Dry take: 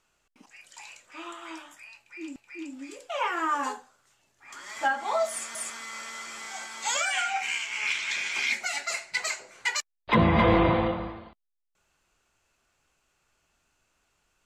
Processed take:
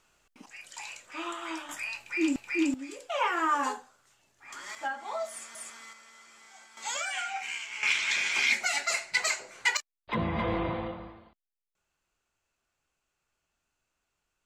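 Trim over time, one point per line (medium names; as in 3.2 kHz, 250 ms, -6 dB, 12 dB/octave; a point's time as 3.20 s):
+4 dB
from 1.69 s +12 dB
from 2.74 s +0.5 dB
from 4.75 s -8 dB
from 5.93 s -15 dB
from 6.77 s -6 dB
from 7.83 s +2 dB
from 9.77 s -9.5 dB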